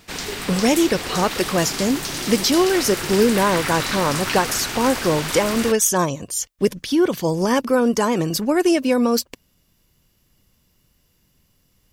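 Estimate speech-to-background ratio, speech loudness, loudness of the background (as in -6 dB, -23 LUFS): 5.5 dB, -20.0 LUFS, -25.5 LUFS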